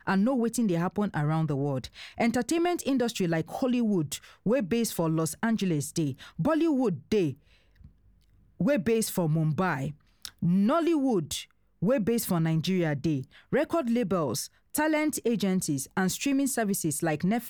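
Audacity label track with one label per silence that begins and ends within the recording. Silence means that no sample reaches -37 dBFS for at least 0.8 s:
7.330000	8.610000	silence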